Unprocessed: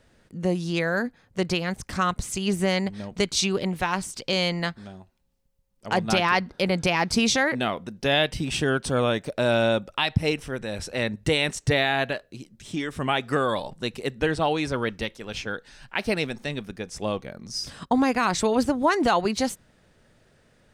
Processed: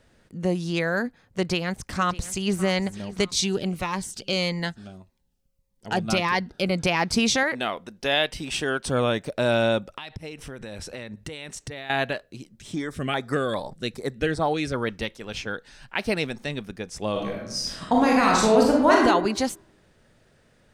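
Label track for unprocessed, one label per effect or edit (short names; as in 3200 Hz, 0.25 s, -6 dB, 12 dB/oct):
1.390000	2.570000	echo throw 0.6 s, feedback 50%, level -17.5 dB
3.250000	6.790000	cascading phaser falling 1.7 Hz
7.430000	8.880000	bell 110 Hz -10 dB 2.6 oct
9.920000	11.900000	compressor 16:1, threshold -32 dBFS
12.740000	14.870000	LFO notch square 2.5 Hz 930–2800 Hz
17.110000	19.020000	reverb throw, RT60 0.85 s, DRR -2.5 dB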